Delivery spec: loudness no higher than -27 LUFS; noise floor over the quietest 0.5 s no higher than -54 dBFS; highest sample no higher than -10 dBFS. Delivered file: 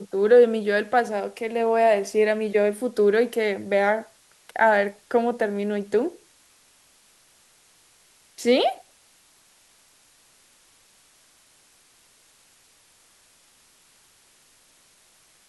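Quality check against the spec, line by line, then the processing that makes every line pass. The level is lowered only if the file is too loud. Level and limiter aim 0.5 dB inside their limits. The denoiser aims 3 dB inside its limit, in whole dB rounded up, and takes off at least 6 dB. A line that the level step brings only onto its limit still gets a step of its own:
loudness -22.0 LUFS: fail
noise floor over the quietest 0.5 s -58 dBFS: pass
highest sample -6.0 dBFS: fail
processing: trim -5.5 dB

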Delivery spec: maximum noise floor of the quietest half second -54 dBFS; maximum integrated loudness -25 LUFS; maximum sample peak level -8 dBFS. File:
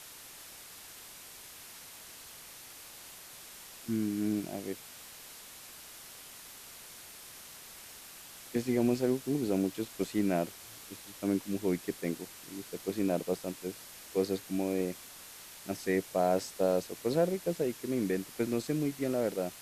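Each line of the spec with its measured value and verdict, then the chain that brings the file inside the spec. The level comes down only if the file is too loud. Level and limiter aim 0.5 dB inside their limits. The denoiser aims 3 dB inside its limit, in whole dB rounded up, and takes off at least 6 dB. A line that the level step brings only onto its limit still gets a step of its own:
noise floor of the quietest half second -50 dBFS: fail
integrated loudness -33.0 LUFS: pass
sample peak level -16.5 dBFS: pass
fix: noise reduction 7 dB, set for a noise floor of -50 dBFS

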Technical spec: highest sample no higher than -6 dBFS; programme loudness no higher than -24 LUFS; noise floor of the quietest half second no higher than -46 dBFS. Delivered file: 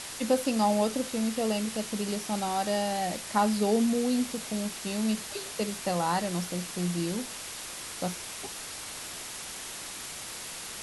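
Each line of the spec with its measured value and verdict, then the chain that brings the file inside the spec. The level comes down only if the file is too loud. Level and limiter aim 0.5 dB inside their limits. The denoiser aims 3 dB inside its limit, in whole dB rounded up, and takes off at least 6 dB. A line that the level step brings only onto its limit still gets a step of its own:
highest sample -13.5 dBFS: pass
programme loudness -30.5 LUFS: pass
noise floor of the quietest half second -40 dBFS: fail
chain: noise reduction 9 dB, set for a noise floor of -40 dBFS

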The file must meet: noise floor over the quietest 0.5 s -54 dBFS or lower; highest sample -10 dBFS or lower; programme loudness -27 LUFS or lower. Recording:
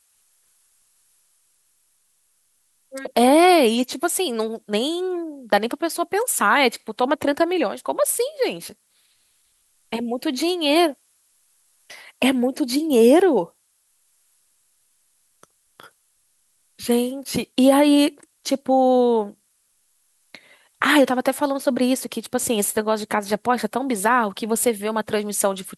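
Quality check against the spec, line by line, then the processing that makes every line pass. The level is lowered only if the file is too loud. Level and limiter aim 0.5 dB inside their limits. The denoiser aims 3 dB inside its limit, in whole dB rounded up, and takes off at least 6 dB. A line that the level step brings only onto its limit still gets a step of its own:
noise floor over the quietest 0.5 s -66 dBFS: pass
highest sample -3.0 dBFS: fail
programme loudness -20.0 LUFS: fail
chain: trim -7.5 dB

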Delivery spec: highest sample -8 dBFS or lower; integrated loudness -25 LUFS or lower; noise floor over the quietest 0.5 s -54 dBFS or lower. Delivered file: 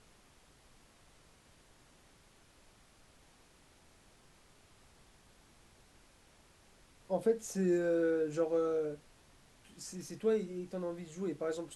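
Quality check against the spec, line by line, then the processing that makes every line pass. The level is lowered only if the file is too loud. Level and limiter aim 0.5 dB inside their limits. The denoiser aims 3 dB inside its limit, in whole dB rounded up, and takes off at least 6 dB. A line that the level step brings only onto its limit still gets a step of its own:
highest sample -19.5 dBFS: pass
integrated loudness -35.0 LUFS: pass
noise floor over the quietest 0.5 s -64 dBFS: pass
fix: none needed

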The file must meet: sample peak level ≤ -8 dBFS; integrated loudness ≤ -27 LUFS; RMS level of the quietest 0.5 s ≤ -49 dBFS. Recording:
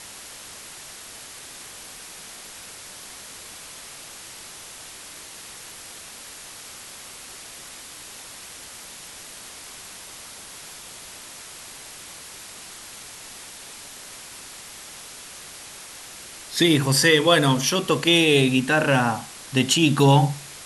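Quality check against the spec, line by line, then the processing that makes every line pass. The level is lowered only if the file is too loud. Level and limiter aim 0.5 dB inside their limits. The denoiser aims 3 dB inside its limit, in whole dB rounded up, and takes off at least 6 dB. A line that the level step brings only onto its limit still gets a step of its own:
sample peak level -4.0 dBFS: fail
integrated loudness -19.0 LUFS: fail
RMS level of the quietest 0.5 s -41 dBFS: fail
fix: trim -8.5 dB

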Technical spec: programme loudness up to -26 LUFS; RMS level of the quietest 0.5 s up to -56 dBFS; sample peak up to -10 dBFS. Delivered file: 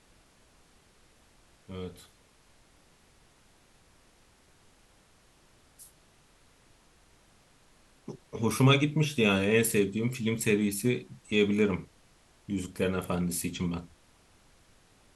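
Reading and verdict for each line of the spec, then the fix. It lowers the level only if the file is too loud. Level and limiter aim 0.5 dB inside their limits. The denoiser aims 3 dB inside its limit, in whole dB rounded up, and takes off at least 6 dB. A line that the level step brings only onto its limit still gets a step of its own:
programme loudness -28.5 LUFS: pass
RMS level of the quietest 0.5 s -62 dBFS: pass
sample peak -9.5 dBFS: fail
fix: peak limiter -10.5 dBFS

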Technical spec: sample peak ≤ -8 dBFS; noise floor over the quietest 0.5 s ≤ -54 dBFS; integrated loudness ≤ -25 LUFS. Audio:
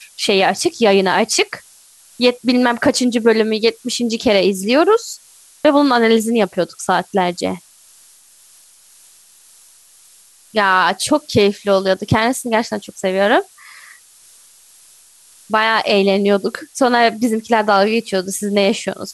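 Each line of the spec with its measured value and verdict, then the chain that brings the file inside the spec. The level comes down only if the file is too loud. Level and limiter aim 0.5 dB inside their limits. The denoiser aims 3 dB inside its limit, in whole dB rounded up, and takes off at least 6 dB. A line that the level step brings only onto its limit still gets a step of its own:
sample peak -2.5 dBFS: fail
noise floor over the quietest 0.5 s -48 dBFS: fail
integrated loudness -16.0 LUFS: fail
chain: trim -9.5 dB

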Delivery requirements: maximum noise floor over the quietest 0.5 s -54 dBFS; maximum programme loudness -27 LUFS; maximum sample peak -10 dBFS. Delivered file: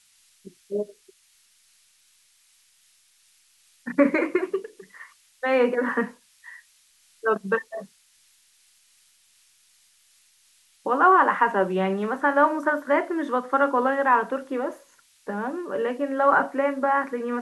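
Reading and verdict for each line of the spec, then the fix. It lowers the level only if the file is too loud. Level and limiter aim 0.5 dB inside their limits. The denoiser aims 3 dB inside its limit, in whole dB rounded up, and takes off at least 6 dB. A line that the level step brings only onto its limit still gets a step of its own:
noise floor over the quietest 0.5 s -61 dBFS: pass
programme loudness -23.5 LUFS: fail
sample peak -6.5 dBFS: fail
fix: trim -4 dB

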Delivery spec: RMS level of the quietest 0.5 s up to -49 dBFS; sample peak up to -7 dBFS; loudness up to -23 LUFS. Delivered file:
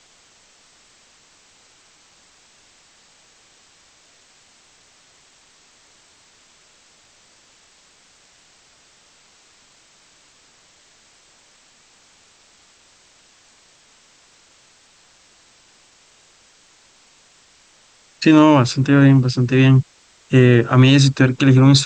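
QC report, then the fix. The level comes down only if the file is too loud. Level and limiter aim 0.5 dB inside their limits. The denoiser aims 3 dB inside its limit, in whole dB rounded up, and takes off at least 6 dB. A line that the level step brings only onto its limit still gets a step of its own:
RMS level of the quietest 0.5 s -53 dBFS: pass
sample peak -1.5 dBFS: fail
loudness -13.5 LUFS: fail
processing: trim -10 dB

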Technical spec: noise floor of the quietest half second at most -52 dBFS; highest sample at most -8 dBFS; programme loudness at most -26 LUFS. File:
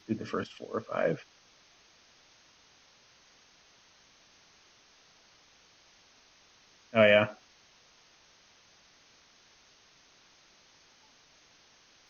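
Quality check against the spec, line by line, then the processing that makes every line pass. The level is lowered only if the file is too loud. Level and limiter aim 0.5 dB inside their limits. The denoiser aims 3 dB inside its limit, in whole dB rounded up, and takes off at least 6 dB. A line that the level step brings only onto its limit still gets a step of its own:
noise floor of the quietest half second -62 dBFS: pass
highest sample -10.0 dBFS: pass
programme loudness -28.5 LUFS: pass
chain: none needed

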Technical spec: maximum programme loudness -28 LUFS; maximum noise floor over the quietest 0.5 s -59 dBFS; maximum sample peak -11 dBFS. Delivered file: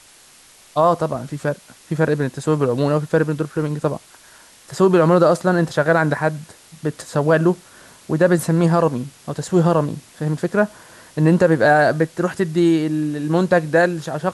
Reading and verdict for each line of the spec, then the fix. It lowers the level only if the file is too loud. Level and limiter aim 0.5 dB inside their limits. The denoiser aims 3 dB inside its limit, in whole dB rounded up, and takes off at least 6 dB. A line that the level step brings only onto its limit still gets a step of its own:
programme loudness -18.5 LUFS: fail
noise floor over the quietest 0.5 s -48 dBFS: fail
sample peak -4.5 dBFS: fail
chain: noise reduction 6 dB, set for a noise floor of -48 dBFS; trim -10 dB

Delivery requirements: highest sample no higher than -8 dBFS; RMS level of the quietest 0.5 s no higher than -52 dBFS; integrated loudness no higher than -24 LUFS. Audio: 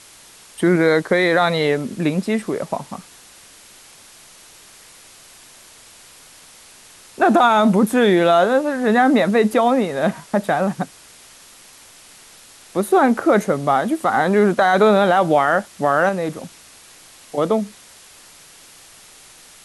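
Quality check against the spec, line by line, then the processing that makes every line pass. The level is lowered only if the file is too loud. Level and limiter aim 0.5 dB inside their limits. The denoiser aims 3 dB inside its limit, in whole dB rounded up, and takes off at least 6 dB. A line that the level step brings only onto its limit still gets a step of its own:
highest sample -5.5 dBFS: fail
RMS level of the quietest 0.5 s -45 dBFS: fail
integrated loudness -17.5 LUFS: fail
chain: noise reduction 6 dB, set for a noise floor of -45 dBFS; trim -7 dB

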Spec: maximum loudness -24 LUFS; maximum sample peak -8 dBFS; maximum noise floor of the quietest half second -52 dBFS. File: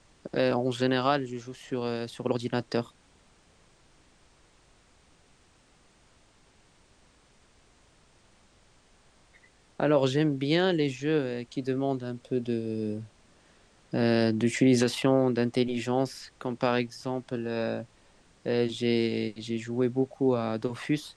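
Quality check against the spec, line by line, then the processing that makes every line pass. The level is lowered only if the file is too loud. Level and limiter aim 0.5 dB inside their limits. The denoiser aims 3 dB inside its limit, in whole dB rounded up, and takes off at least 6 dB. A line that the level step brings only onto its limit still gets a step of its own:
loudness -28.5 LUFS: pass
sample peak -11.0 dBFS: pass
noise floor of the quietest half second -62 dBFS: pass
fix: none needed

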